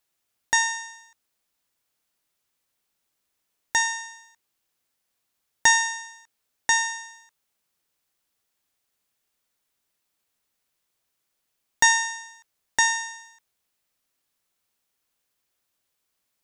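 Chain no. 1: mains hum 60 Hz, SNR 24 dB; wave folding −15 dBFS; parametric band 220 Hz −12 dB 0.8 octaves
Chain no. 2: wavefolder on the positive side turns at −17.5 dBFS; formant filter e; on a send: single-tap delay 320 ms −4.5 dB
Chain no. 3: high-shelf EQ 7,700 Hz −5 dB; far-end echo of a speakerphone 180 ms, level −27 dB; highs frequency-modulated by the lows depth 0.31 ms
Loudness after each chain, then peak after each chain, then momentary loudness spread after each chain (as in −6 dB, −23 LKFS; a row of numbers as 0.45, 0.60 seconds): −25.0, −34.0, −23.5 LKFS; −14.0, −20.5, −5.5 dBFS; 18, 17, 18 LU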